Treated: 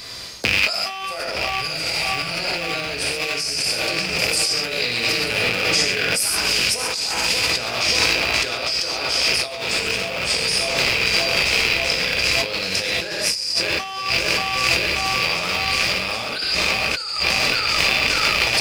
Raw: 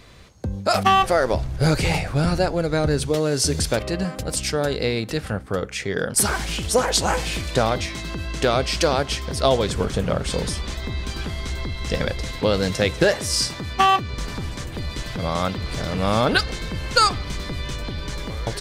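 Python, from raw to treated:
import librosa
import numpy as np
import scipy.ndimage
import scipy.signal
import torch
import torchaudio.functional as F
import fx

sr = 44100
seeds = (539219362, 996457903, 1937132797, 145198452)

p1 = fx.rattle_buzz(x, sr, strikes_db=-29.0, level_db=-11.0)
p2 = fx.peak_eq(p1, sr, hz=4900.0, db=14.0, octaves=0.26)
p3 = fx.hum_notches(p2, sr, base_hz=50, count=10)
p4 = p3 + fx.echo_filtered(p3, sr, ms=583, feedback_pct=81, hz=2400.0, wet_db=-8.5, dry=0)
p5 = fx.rev_gated(p4, sr, seeds[0], gate_ms=160, shape='flat', drr_db=-1.5)
p6 = fx.over_compress(p5, sr, threshold_db=-24.0, ratio=-1.0)
y = fx.tilt_eq(p6, sr, slope=2.5)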